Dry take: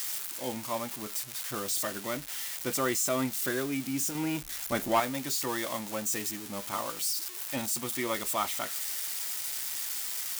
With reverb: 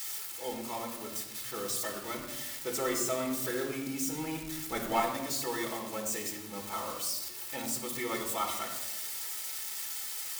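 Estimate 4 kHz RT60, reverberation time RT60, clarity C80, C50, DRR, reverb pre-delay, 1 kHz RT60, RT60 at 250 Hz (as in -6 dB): 0.70 s, 1.0 s, 8.5 dB, 6.5 dB, 0.5 dB, 4 ms, 0.85 s, 1.3 s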